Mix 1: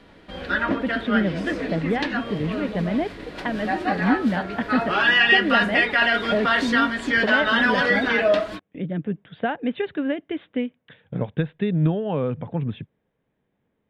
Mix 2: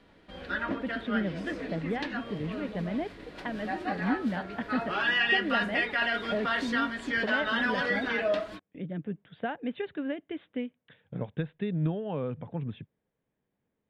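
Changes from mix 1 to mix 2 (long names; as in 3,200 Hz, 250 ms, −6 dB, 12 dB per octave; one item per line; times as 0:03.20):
speech −8.5 dB
background −9.0 dB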